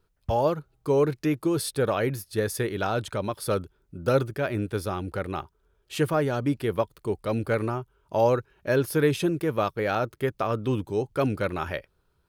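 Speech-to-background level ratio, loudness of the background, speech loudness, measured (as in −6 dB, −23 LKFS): 13.5 dB, −40.5 LKFS, −27.0 LKFS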